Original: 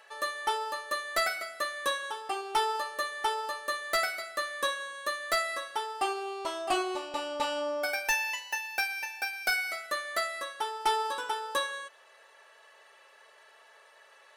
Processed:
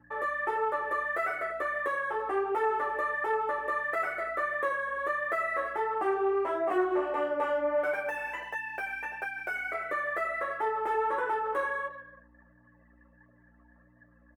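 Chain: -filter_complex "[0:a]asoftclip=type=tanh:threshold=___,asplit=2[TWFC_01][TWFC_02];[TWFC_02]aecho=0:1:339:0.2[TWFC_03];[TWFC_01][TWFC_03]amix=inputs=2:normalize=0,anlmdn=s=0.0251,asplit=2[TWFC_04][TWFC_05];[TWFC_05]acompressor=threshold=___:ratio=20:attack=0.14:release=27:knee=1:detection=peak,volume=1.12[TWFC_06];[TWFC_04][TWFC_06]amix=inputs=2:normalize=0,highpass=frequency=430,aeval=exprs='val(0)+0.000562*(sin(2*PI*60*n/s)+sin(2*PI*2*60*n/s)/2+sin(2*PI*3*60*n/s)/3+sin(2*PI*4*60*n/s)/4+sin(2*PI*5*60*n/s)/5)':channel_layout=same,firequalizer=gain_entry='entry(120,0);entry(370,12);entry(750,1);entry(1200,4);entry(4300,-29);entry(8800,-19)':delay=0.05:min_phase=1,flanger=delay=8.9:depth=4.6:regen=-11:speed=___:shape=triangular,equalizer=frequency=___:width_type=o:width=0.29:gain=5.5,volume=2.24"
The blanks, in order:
0.0168, 0.00447, 1.5, 1900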